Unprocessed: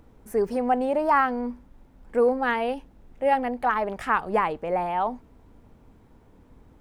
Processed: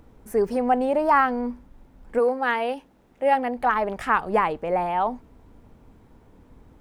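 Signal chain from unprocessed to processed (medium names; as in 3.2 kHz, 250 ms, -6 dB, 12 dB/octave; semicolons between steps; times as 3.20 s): 2.18–3.55 s: high-pass 490 Hz -> 160 Hz 6 dB/octave; trim +2 dB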